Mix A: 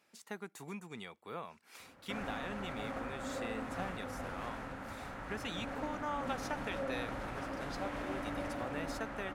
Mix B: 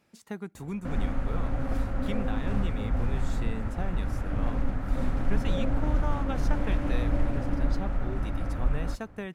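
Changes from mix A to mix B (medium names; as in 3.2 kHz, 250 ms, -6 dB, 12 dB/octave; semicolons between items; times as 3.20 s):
background: entry -1.25 s; master: remove high-pass 710 Hz 6 dB/octave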